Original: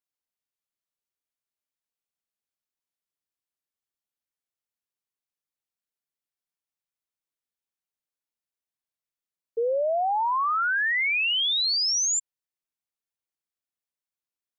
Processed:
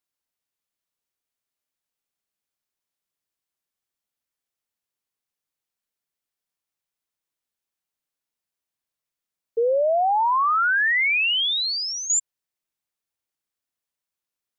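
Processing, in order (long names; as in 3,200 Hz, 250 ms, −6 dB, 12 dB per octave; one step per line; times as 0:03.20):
0:10.23–0:12.10: low-pass filter 3,500 Hz 12 dB per octave
level +4.5 dB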